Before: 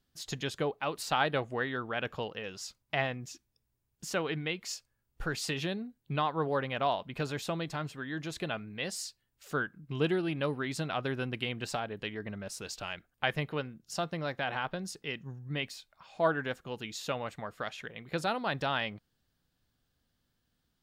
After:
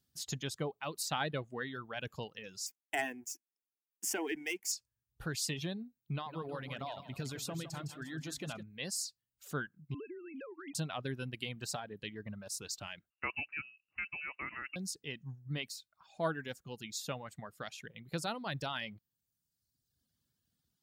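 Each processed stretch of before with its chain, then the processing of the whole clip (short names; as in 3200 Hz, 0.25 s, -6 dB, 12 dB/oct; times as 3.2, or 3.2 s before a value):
2.66–4.72 HPF 230 Hz 24 dB/oct + sample leveller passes 2 + fixed phaser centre 810 Hz, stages 8
6.01–8.63 compressor 3:1, threshold -31 dBFS + feedback echo 0.159 s, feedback 49%, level -6.5 dB
9.94–10.75 sine-wave speech + compressor 8:1, threshold -37 dBFS
13.1–14.76 air absorption 190 m + inverted band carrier 2800 Hz
whole clip: HPF 79 Hz; reverb removal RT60 1.2 s; tone controls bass +8 dB, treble +11 dB; gain -7 dB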